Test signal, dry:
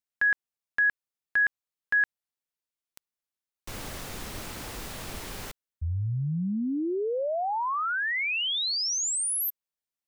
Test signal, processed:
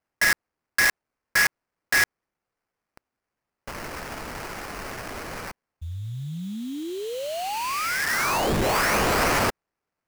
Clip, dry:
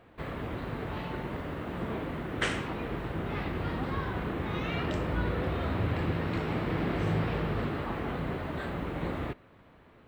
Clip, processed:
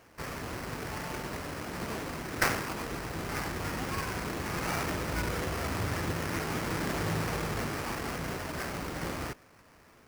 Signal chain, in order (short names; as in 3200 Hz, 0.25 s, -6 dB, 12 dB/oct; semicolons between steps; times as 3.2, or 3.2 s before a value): tilt shelf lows -5.5 dB, about 1200 Hz; sample-rate reducer 3600 Hz, jitter 20%; gain +1.5 dB